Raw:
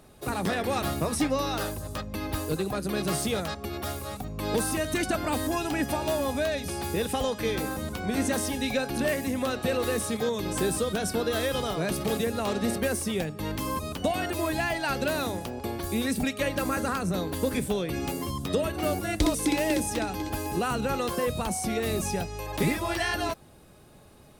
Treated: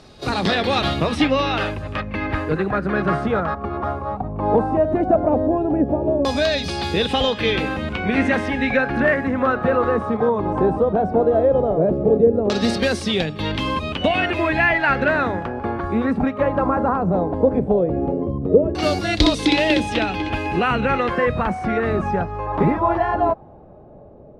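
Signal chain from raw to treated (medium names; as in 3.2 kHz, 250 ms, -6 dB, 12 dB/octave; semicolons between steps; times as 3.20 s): reverse echo 30 ms -16.5 dB; LFO low-pass saw down 0.16 Hz 430–5000 Hz; trim +7.5 dB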